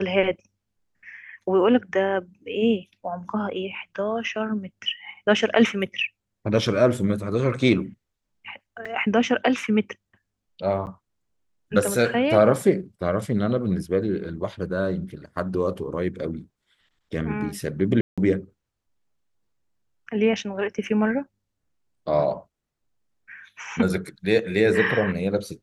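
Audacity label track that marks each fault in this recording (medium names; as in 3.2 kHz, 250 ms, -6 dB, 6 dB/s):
8.850000	8.860000	dropout 5.1 ms
10.860000	10.870000	dropout 9.2 ms
18.010000	18.180000	dropout 166 ms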